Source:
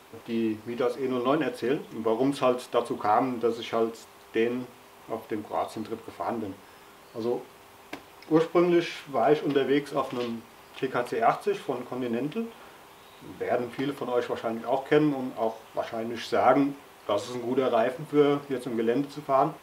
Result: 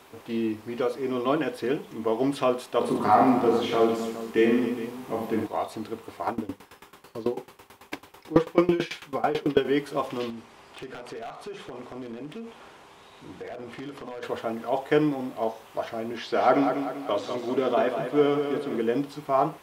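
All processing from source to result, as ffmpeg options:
-filter_complex "[0:a]asettb=1/sr,asplit=3[a][b][c];[a]atrim=end=2.794[d];[b]atrim=start=2.79:end=5.47,asetpts=PTS-STARTPTS,afade=t=in:d=0.004:c=qsin,afade=t=out:st=2.676:d=0.004:c=qsin,equalizer=f=200:t=o:w=0.47:g=13,aecho=1:1:20|50|95|162.5|263.8|415.6:0.794|0.631|0.501|0.398|0.316|0.251,atrim=end_sample=118188[e];[c]atrim=start=5.466[f];[d][e]acrossfade=d=0.004:c1=hsin:c2=qsin[g];[g][f]acrossfade=d=0.004:c1=qsin:c2=hsin,asettb=1/sr,asplit=3[h][i][j];[h]atrim=end=6.274[k];[i]atrim=start=6.27:end=9.65,asetpts=PTS-STARTPTS,afade=t=in:d=0.004:c=qsin,afade=t=out:st=3.376:d=0.004:c=qsin,bandreject=f=660:w=7.2,acontrast=83,aeval=exprs='val(0)*pow(10,-21*if(lt(mod(9.1*n/s,1),2*abs(9.1)/1000),1-mod(9.1*n/s,1)/(2*abs(9.1)/1000),(mod(9.1*n/s,1)-2*abs(9.1)/1000)/(1-2*abs(9.1)/1000))/20)':c=same[l];[j]atrim=start=9.646[m];[k][l]acrossfade=d=0.004:c1=hsin:c2=qsin[n];[n][m]acrossfade=d=0.004:c1=qsin:c2=hsin,asettb=1/sr,asplit=3[o][p][q];[o]atrim=end=10.304[r];[p]atrim=start=10.3:end=14.23,asetpts=PTS-STARTPTS,afade=t=in:d=0.004:c=qsin,afade=t=out:st=3.926:d=0.004:c=qsin,lowpass=8.3k,acompressor=threshold=-34dB:ratio=5:attack=3.2:release=140:knee=1:detection=peak,aeval=exprs='0.0282*(abs(mod(val(0)/0.0282+3,4)-2)-1)':c=same[s];[q]atrim=start=14.226[t];[r][s]acrossfade=d=0.004:c1=hsin:c2=qsin[u];[u][t]acrossfade=d=0.004:c1=qsin:c2=hsin,asettb=1/sr,asplit=3[v][w][x];[v]atrim=end=16.134[y];[w]atrim=start=16.13:end=18.82,asetpts=PTS-STARTPTS,afade=t=in:d=0.004:c=qsin,afade=t=out:st=2.686:d=0.004:c=qsin,acrossover=split=6000[z][aa];[aa]acompressor=threshold=-60dB:ratio=4:attack=1:release=60[ab];[z][ab]amix=inputs=2:normalize=0,highpass=130,aecho=1:1:196|392|588|784|980:0.447|0.205|0.0945|0.0435|0.02,atrim=end_sample=118629[ac];[x]atrim=start=18.816[ad];[y][ac]acrossfade=d=0.004:c1=hsin:c2=qsin[ae];[ae][ad]acrossfade=d=0.004:c1=qsin:c2=hsin"

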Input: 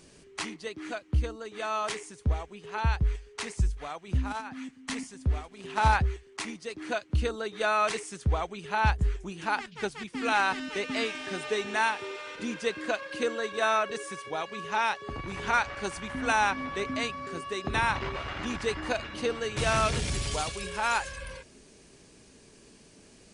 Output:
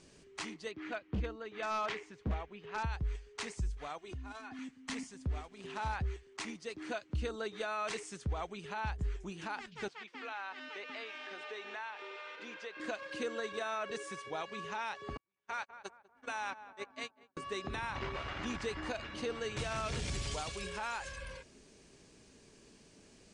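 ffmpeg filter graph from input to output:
-filter_complex "[0:a]asettb=1/sr,asplit=3[a][b][c];[a]atrim=end=0.714[d];[b]atrim=start=0.71:end=2.83,asetpts=PTS-STARTPTS,afade=t=in:d=0.004:c=qsin,afade=t=out:st=2.116:d=0.004:c=qsin,lowpass=3.5k,equalizer=f=2.1k:t=o:w=1.3:g=3,aeval=exprs='0.0708*(abs(mod(val(0)/0.0708+3,4)-2)-1)':c=same[e];[c]atrim=start=2.826[f];[d][e]acrossfade=d=0.004:c1=hsin:c2=qsin[g];[g][f]acrossfade=d=0.004:c1=qsin:c2=hsin,asettb=1/sr,asplit=3[h][i][j];[h]atrim=end=3.984[k];[i]atrim=start=3.98:end=4.59,asetpts=PTS-STARTPTS,afade=t=in:d=0.004:c=qsin,afade=t=out:st=0.606:d=0.004:c=qsin,aecho=1:1:2.8:0.81,atrim=end_sample=26901,acompressor=threshold=-38dB:ratio=4:attack=3.2:release=140:knee=1:detection=peak[l];[j]atrim=start=4.586[m];[k][l]acrossfade=d=0.004:c1=hsin:c2=qsin[n];[n][m]acrossfade=d=0.004:c1=qsin:c2=hsin,asettb=1/sr,asplit=3[o][p][q];[o]atrim=end=9.884[r];[p]atrim=start=9.88:end=12.8,asetpts=PTS-STARTPTS,afade=t=in:d=0.004:c=qsin,afade=t=out:st=2.916:d=0.004:c=qsin,highpass=520,lowpass=3.7k,acompressor=threshold=-37dB:ratio=3:attack=3.2:release=140:knee=1:detection=peak[s];[q]atrim=start=12.796[t];[r][s]acrossfade=d=0.004:c1=hsin:c2=qsin[u];[u][t]acrossfade=d=0.004:c1=qsin:c2=hsin,asettb=1/sr,asplit=3[v][w][x];[v]atrim=end=15.174[y];[w]atrim=start=15.17:end=17.37,asetpts=PTS-STARTPTS,afade=t=in:d=0.004:c=qsin,afade=t=out:st=2.196:d=0.004:c=qsin,agate=range=-47dB:threshold=-30dB:ratio=16:release=100:detection=peak,highpass=f=360:p=1,asplit=2[z][aa];[aa]adelay=196,lowpass=f=1.2k:p=1,volume=-19dB,asplit=2[ab][ac];[ac]adelay=196,lowpass=f=1.2k:p=1,volume=0.51,asplit=2[ad][ae];[ae]adelay=196,lowpass=f=1.2k:p=1,volume=0.51,asplit=2[af][ag];[ag]adelay=196,lowpass=f=1.2k:p=1,volume=0.51[ah];[z][ab][ad][af][ah]amix=inputs=5:normalize=0,atrim=end_sample=97020[ai];[x]atrim=start=17.366[aj];[y][ai]acrossfade=d=0.004:c1=hsin:c2=qsin[ak];[ak][aj]acrossfade=d=0.004:c1=qsin:c2=hsin,alimiter=limit=-23dB:level=0:latency=1:release=90,lowpass=f=8.7k:w=0.5412,lowpass=f=8.7k:w=1.3066,volume=-5dB"

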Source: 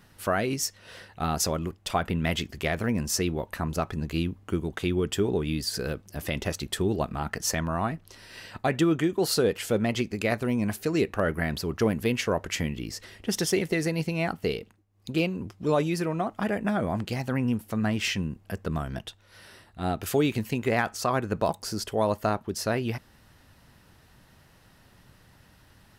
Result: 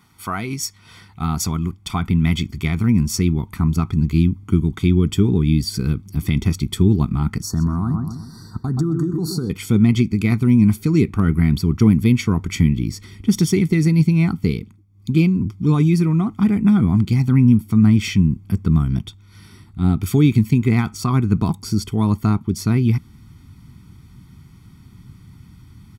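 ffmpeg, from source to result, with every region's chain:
-filter_complex "[0:a]asettb=1/sr,asplit=3[a][b][c];[a]atrim=end=7.424[d];[b]atrim=start=7.42:end=9.5,asetpts=PTS-STARTPTS,afade=t=in:d=0.004:c=qsin,afade=t=out:st=2.076:d=0.004:c=qsin,asuperstop=centerf=2600:order=12:qfactor=1.2,asplit=2[e][f];[f]adelay=126,lowpass=f=1.6k:p=1,volume=-7.5dB,asplit=2[g][h];[h]adelay=126,lowpass=f=1.6k:p=1,volume=0.47,asplit=2[i][j];[j]adelay=126,lowpass=f=1.6k:p=1,volume=0.47,asplit=2[k][l];[l]adelay=126,lowpass=f=1.6k:p=1,volume=0.47,asplit=2[m][n];[n]adelay=126,lowpass=f=1.6k:p=1,volume=0.47[o];[e][g][i][k][m][o]amix=inputs=6:normalize=0,atrim=end_sample=91728,acompressor=threshold=-27dB:ratio=6:attack=3.2:release=140:knee=1:detection=peak[p];[c]atrim=start=9.496[q];[d][p]acrossfade=d=0.004:c1=hsin:c2=qsin[r];[r][q]acrossfade=d=0.004:c1=qsin:c2=hsin,highpass=f=170:p=1,aecho=1:1:0.9:0.9,asubboost=boost=8:cutoff=240"

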